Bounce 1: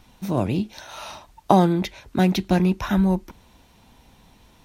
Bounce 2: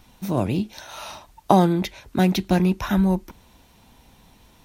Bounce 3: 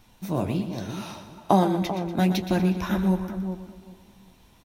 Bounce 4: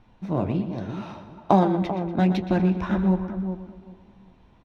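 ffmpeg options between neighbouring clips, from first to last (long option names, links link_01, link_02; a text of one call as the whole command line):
ffmpeg -i in.wav -af "highshelf=frequency=10000:gain=6" out.wav
ffmpeg -i in.wav -filter_complex "[0:a]asplit=2[link_01][link_02];[link_02]adelay=389,lowpass=frequency=840:poles=1,volume=-8dB,asplit=2[link_03][link_04];[link_04]adelay=389,lowpass=frequency=840:poles=1,volume=0.24,asplit=2[link_05][link_06];[link_06]adelay=389,lowpass=frequency=840:poles=1,volume=0.24[link_07];[link_03][link_05][link_07]amix=inputs=3:normalize=0[link_08];[link_01][link_08]amix=inputs=2:normalize=0,flanger=delay=8.5:depth=5.6:regen=-45:speed=1.2:shape=triangular,asplit=2[link_09][link_10];[link_10]aecho=0:1:120|240|360|480|600:0.282|0.144|0.0733|0.0374|0.0191[link_11];[link_09][link_11]amix=inputs=2:normalize=0" out.wav
ffmpeg -i in.wav -af "adynamicsmooth=sensitivity=1:basefreq=2300,volume=1.5dB" out.wav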